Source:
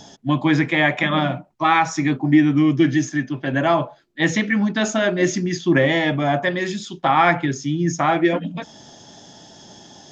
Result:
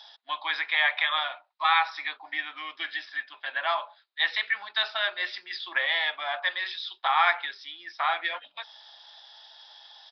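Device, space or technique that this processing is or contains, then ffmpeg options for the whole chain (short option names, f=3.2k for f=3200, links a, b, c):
musical greeting card: -af "aresample=11025,aresample=44100,highpass=f=890:w=0.5412,highpass=f=890:w=1.3066,equalizer=f=3.8k:t=o:w=0.26:g=10,volume=-4dB"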